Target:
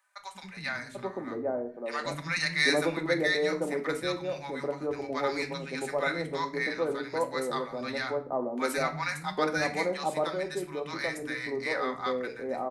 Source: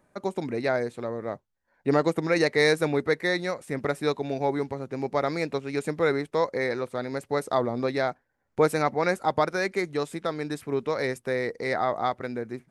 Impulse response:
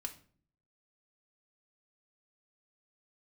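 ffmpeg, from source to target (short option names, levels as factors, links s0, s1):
-filter_complex "[0:a]tiltshelf=f=710:g=-3,acrossover=split=190|930[s0][s1][s2];[s0]adelay=190[s3];[s1]adelay=790[s4];[s3][s4][s2]amix=inputs=3:normalize=0[s5];[1:a]atrim=start_sample=2205[s6];[s5][s6]afir=irnorm=-1:irlink=0"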